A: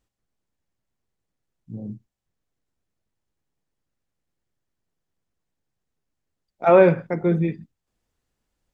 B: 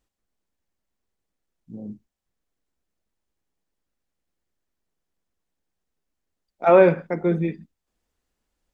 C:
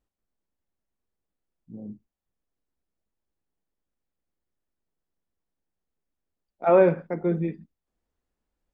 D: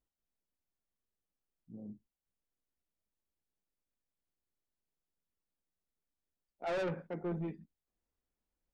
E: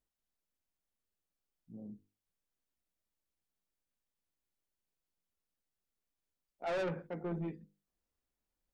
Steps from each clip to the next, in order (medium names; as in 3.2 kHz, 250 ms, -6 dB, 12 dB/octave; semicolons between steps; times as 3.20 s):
peaking EQ 120 Hz -13 dB 0.49 oct
treble shelf 2.1 kHz -9.5 dB; trim -3 dB
saturation -24.5 dBFS, distortion -5 dB; trim -8 dB
hum notches 50/100/150/200/250/300/350/400/450/500 Hz